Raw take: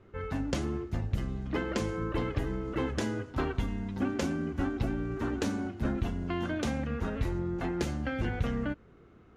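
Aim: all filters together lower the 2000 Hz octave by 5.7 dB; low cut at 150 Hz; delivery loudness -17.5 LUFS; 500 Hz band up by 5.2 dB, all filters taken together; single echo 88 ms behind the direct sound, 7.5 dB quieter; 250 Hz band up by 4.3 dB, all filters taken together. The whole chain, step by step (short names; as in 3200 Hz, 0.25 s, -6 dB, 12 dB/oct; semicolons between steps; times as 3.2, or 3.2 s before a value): HPF 150 Hz; bell 250 Hz +4.5 dB; bell 500 Hz +5.5 dB; bell 2000 Hz -8.5 dB; echo 88 ms -7.5 dB; gain +12.5 dB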